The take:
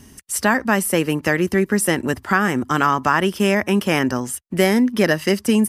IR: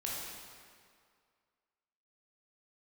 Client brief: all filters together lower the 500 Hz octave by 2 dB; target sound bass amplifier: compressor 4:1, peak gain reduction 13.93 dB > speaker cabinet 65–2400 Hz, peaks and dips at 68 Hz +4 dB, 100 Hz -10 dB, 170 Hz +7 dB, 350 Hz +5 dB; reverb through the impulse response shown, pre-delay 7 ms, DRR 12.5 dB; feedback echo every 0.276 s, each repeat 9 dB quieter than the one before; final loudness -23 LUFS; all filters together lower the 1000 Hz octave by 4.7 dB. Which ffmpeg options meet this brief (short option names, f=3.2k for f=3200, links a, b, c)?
-filter_complex "[0:a]equalizer=f=500:t=o:g=-5,equalizer=f=1k:t=o:g=-5,aecho=1:1:276|552|828|1104:0.355|0.124|0.0435|0.0152,asplit=2[a][b];[1:a]atrim=start_sample=2205,adelay=7[c];[b][c]afir=irnorm=-1:irlink=0,volume=-15dB[d];[a][d]amix=inputs=2:normalize=0,acompressor=threshold=-30dB:ratio=4,highpass=f=65:w=0.5412,highpass=f=65:w=1.3066,equalizer=f=68:t=q:w=4:g=4,equalizer=f=100:t=q:w=4:g=-10,equalizer=f=170:t=q:w=4:g=7,equalizer=f=350:t=q:w=4:g=5,lowpass=f=2.4k:w=0.5412,lowpass=f=2.4k:w=1.3066,volume=7.5dB"